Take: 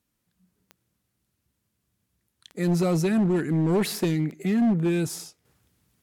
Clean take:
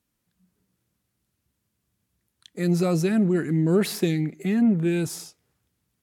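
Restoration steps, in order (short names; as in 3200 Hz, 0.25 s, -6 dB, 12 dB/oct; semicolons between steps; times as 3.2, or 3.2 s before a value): clip repair -18 dBFS; de-click; gain 0 dB, from 5.45 s -7 dB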